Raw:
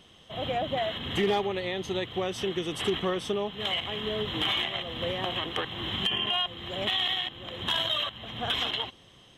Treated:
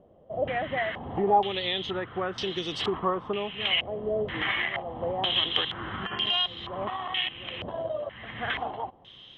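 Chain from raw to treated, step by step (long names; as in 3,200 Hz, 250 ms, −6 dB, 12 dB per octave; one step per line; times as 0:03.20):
pitch vibrato 3.9 Hz 11 cents
low-pass on a step sequencer 2.1 Hz 600–4,600 Hz
level −2 dB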